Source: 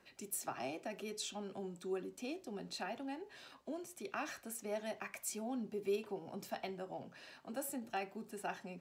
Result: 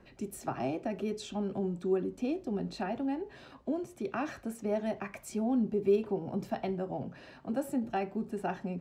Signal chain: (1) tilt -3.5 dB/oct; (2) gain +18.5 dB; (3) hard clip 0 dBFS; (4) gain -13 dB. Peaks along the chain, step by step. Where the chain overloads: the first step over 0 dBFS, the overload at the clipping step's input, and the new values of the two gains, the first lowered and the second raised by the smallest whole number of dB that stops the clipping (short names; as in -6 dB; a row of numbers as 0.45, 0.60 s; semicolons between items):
-22.5, -4.0, -4.0, -17.0 dBFS; no overload